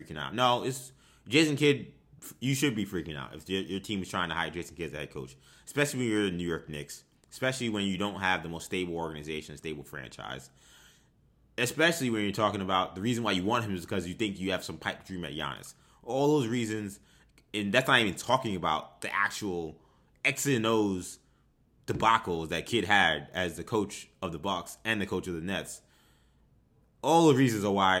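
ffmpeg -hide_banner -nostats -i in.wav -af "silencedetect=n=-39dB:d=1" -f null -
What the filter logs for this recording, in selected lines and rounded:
silence_start: 10.40
silence_end: 11.58 | silence_duration: 1.18
silence_start: 25.76
silence_end: 27.04 | silence_duration: 1.28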